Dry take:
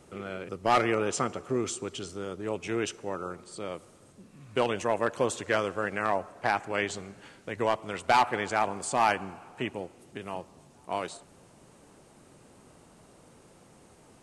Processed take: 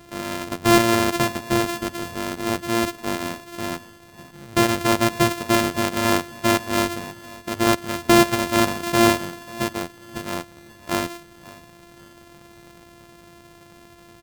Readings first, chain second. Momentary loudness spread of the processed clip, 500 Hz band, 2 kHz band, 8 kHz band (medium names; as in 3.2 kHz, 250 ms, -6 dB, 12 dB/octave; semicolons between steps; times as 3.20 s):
15 LU, +6.5 dB, +7.5 dB, +10.5 dB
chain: sorted samples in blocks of 128 samples; feedback delay 541 ms, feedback 36%, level -19.5 dB; trim +8.5 dB